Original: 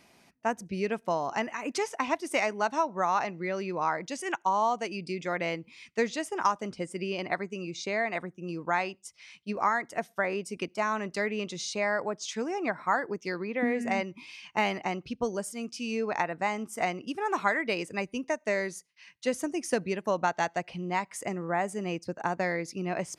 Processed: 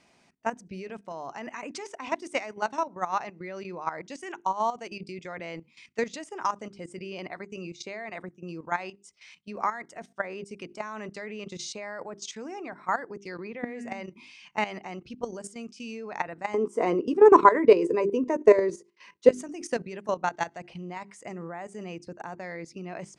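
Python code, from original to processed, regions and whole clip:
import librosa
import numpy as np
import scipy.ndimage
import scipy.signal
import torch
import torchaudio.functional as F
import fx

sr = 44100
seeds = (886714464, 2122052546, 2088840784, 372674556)

y = fx.chain(x, sr, fx.peak_eq(hz=320.0, db=11.0, octaves=1.5),
    fx.doubler(ms=12.0, db=-11.5),
    fx.small_body(hz=(450.0, 1000.0), ring_ms=20, db=15), at=(16.54, 19.29))
y = scipy.signal.sosfilt(scipy.signal.cheby1(3, 1.0, 8400.0, 'lowpass', fs=sr, output='sos'), y)
y = fx.hum_notches(y, sr, base_hz=50, count=8)
y = fx.level_steps(y, sr, step_db=13)
y = y * 10.0 ** (1.5 / 20.0)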